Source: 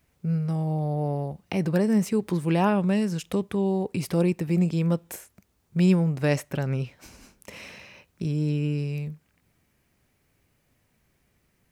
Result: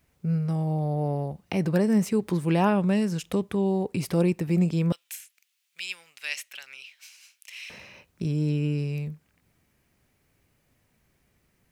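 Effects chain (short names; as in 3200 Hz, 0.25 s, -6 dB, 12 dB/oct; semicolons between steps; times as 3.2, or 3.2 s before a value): 4.92–7.7 resonant high-pass 2700 Hz, resonance Q 1.8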